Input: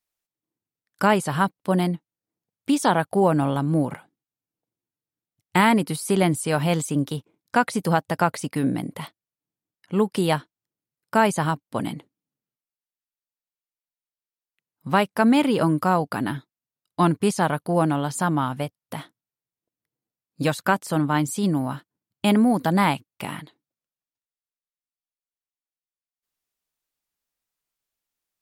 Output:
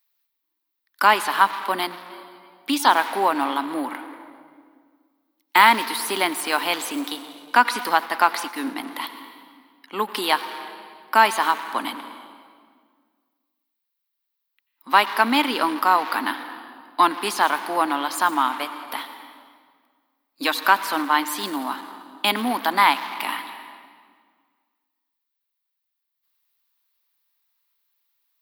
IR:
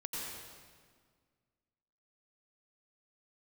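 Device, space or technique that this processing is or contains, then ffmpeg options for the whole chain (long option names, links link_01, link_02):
saturated reverb return: -filter_complex "[0:a]asplit=2[link_01][link_02];[1:a]atrim=start_sample=2205[link_03];[link_02][link_03]afir=irnorm=-1:irlink=0,asoftclip=type=tanh:threshold=-24.5dB,volume=-5.5dB[link_04];[link_01][link_04]amix=inputs=2:normalize=0,highpass=frequency=270:width=0.5412,highpass=frequency=270:width=1.3066,aemphasis=mode=production:type=bsi,asplit=3[link_05][link_06][link_07];[link_05]afade=type=out:start_time=7.83:duration=0.02[link_08];[link_06]agate=range=-33dB:threshold=-24dB:ratio=3:detection=peak,afade=type=in:start_time=7.83:duration=0.02,afade=type=out:start_time=8.75:duration=0.02[link_09];[link_07]afade=type=in:start_time=8.75:duration=0.02[link_10];[link_08][link_09][link_10]amix=inputs=3:normalize=0,equalizer=frequency=125:width_type=o:width=1:gain=-10,equalizer=frequency=250:width_type=o:width=1:gain=10,equalizer=frequency=500:width_type=o:width=1:gain=-6,equalizer=frequency=1000:width_type=o:width=1:gain=11,equalizer=frequency=2000:width_type=o:width=1:gain=6,equalizer=frequency=4000:width_type=o:width=1:gain=10,equalizer=frequency=8000:width_type=o:width=1:gain=-10,volume=-5dB"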